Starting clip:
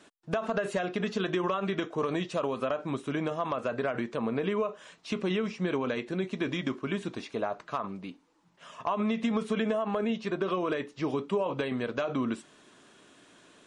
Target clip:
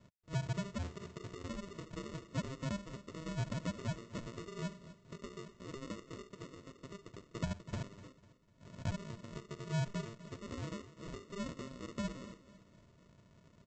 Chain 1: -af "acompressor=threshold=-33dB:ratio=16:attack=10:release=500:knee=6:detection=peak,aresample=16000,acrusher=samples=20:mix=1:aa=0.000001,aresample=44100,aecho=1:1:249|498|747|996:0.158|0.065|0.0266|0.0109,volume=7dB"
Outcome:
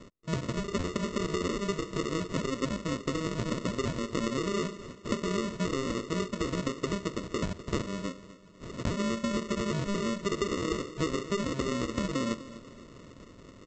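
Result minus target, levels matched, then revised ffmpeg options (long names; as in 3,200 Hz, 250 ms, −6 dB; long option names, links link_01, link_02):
500 Hz band +4.0 dB
-af "acompressor=threshold=-33dB:ratio=16:attack=10:release=500:knee=6:detection=peak,bandpass=frequency=670:width_type=q:width=6.2:csg=0,aresample=16000,acrusher=samples=20:mix=1:aa=0.000001,aresample=44100,aecho=1:1:249|498|747|996:0.158|0.065|0.0266|0.0109,volume=7dB"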